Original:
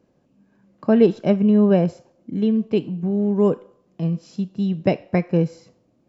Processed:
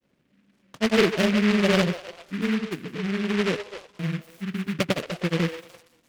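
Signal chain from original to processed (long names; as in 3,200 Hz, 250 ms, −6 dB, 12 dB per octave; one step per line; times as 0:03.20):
echo through a band-pass that steps 159 ms, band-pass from 560 Hz, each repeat 0.7 octaves, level −8 dB
granular cloud
short delay modulated by noise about 1,900 Hz, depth 0.19 ms
level −4.5 dB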